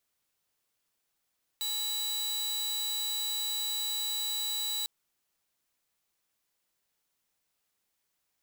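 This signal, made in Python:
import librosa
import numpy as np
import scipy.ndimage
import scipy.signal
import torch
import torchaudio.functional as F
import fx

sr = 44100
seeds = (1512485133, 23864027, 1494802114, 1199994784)

y = 10.0 ** (-28.0 / 20.0) * (2.0 * np.mod(3930.0 * (np.arange(round(3.25 * sr)) / sr), 1.0) - 1.0)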